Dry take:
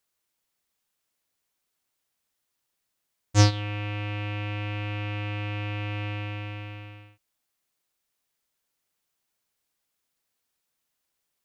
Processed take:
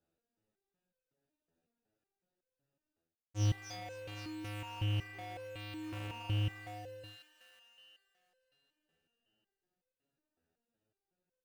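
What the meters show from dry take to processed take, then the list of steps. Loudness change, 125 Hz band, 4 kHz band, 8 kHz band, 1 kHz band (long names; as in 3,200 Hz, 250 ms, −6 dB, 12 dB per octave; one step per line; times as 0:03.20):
−11.0 dB, −10.0 dB, −10.5 dB, −14.0 dB, −11.0 dB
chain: adaptive Wiener filter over 41 samples
in parallel at −9 dB: sample-and-hold swept by an LFO 14×, swing 100% 0.84 Hz
on the sum: low-shelf EQ 100 Hz −7 dB
delay with a high-pass on its return 264 ms, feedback 63%, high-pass 1,400 Hz, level −13 dB
reversed playback
downward compressor 16 to 1, threshold −42 dBFS, peak gain reduction 29.5 dB
reversed playback
step-sequenced resonator 5.4 Hz 83–510 Hz
level +18 dB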